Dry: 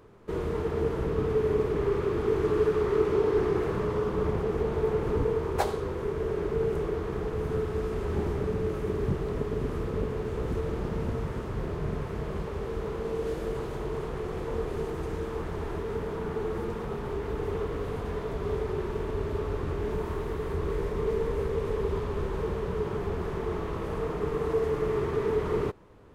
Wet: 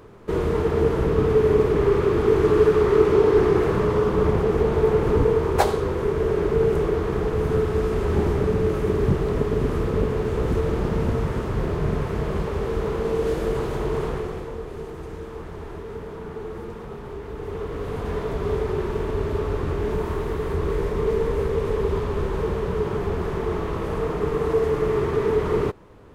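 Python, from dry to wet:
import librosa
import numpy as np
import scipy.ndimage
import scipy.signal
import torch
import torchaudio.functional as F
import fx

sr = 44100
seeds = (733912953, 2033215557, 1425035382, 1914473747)

y = fx.gain(x, sr, db=fx.line((14.09, 8.0), (14.57, -2.0), (17.32, -2.0), (18.13, 6.0)))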